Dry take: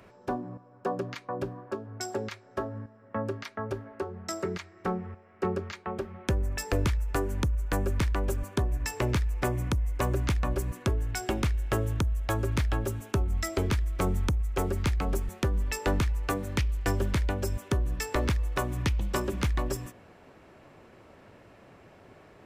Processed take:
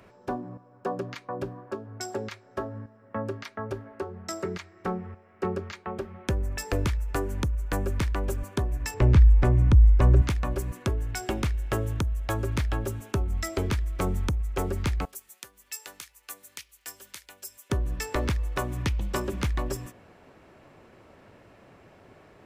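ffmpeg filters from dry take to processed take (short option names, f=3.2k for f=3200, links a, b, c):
-filter_complex "[0:a]asettb=1/sr,asplit=3[a][b][c];[a]atrim=end=8.944[d];[b]atrim=start=8.94:end=10.22,asetpts=PTS-STARTPTS,afade=t=in:d=0.004:c=qsin,afade=t=out:st=1.276:d=0.004:c=qsin,aemphasis=mode=reproduction:type=bsi[e];[c]atrim=start=10.216[f];[d][e]acrossfade=d=0.004:c1=hsin:c2=qsin[g];[g][f]acrossfade=d=0.004:c1=qsin:c2=hsin,asettb=1/sr,asplit=3[h][i][j];[h]atrim=end=15.054[k];[i]atrim=start=15.05:end=17.7,asetpts=PTS-STARTPTS,afade=t=in:d=0.004:c=qsin,afade=t=out:st=2.646:d=0.004:c=qsin,aderivative[l];[j]atrim=start=17.696[m];[k][l]acrossfade=d=0.004:c1=hsin:c2=qsin[n];[n][m]acrossfade=d=0.004:c1=qsin:c2=hsin"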